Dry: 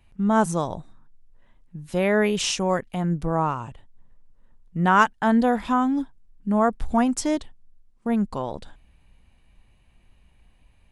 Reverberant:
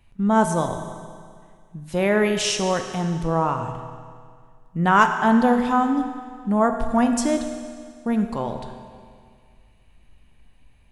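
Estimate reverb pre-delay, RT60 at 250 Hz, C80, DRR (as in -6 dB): 8 ms, 2.0 s, 8.0 dB, 5.5 dB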